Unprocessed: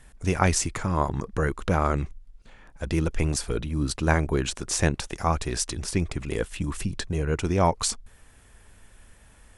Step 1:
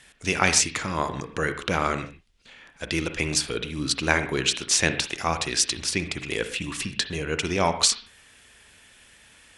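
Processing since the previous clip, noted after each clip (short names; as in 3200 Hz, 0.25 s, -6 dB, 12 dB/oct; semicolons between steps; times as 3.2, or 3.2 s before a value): weighting filter D; on a send at -9 dB: reverb, pre-delay 36 ms; on the sum: gain -1 dB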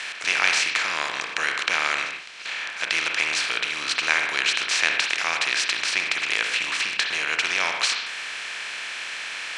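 per-bin compression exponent 0.4; band-pass 2300 Hz, Q 1.3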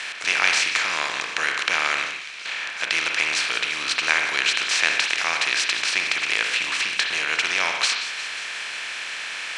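thin delay 0.179 s, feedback 67%, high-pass 2200 Hz, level -12 dB; gain +1 dB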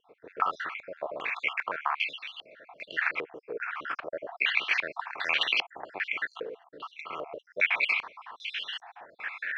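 random spectral dropouts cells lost 57%; dynamic EQ 550 Hz, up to +4 dB, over -41 dBFS, Q 0.74; stepped low-pass 2.5 Hz 460–3000 Hz; gain -8 dB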